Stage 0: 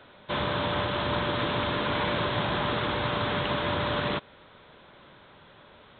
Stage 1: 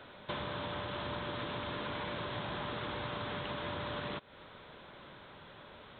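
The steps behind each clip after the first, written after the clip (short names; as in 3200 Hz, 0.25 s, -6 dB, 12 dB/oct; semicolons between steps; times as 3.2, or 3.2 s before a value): compressor 6:1, threshold -37 dBFS, peak gain reduction 12.5 dB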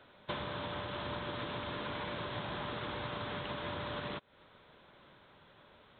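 upward expander 1.5:1, over -56 dBFS; gain +1 dB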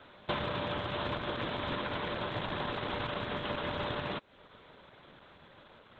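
rattling part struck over -42 dBFS, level -42 dBFS; gain +5.5 dB; Opus 12 kbps 48000 Hz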